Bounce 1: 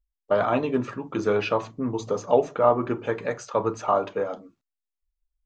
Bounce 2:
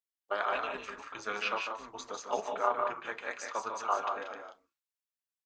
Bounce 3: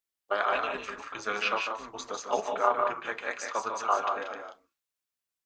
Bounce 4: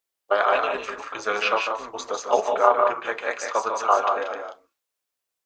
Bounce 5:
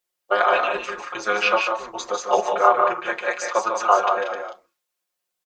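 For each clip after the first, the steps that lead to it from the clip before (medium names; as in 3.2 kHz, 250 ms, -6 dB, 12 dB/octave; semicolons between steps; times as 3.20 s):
high-pass 1.1 kHz 12 dB/octave; AM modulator 210 Hz, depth 55%; loudspeakers at several distances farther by 51 m -7 dB, 63 m -7 dB
band-stop 920 Hz, Q 24; trim +4.5 dB
FFT filter 220 Hz 0 dB, 500 Hz +9 dB, 1.7 kHz +4 dB; trim +1 dB
comb 5.6 ms, depth 90%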